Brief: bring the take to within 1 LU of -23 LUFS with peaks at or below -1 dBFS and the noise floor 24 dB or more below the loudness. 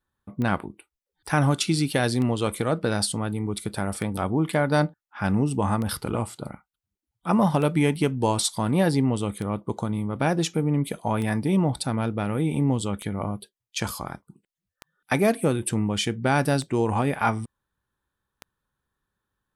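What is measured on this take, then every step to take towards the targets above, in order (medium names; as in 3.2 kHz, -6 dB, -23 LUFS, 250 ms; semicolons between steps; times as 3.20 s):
clicks found 11; loudness -25.0 LUFS; peak level -9.5 dBFS; loudness target -23.0 LUFS
-> de-click; trim +2 dB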